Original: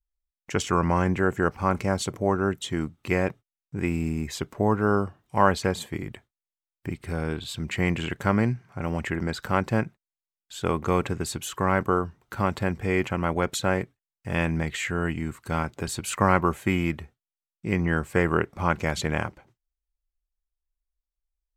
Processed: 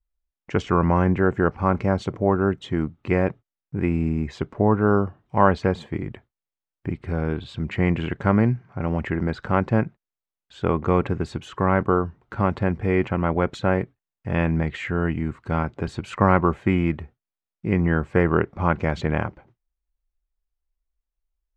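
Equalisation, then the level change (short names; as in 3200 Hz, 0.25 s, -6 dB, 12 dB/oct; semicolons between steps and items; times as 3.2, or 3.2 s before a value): tape spacing loss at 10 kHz 29 dB; +5.0 dB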